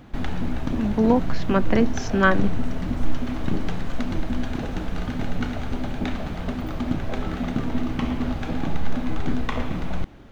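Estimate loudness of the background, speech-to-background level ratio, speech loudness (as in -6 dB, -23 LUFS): -29.0 LUFS, 6.5 dB, -22.5 LUFS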